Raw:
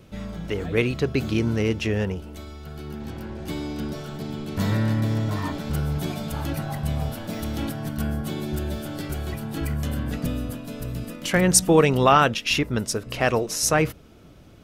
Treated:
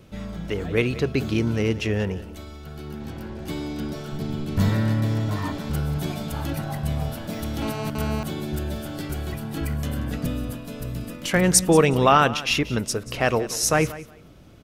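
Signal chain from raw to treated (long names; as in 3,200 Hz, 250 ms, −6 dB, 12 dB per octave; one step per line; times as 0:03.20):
0:04.12–0:04.69: low-shelf EQ 120 Hz +10.5 dB
repeating echo 183 ms, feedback 18%, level −17 dB
0:07.62–0:08.23: phone interference −32 dBFS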